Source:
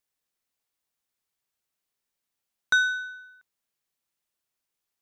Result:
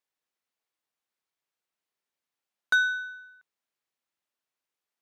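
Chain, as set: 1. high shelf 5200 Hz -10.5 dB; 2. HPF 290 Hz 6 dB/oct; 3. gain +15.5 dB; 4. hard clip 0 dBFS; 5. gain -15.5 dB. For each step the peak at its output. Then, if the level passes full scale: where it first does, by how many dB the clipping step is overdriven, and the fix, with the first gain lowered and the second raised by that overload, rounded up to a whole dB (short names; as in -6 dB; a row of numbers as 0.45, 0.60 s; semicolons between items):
-13.0, -12.5, +3.0, 0.0, -15.5 dBFS; step 3, 3.0 dB; step 3 +12.5 dB, step 5 -12.5 dB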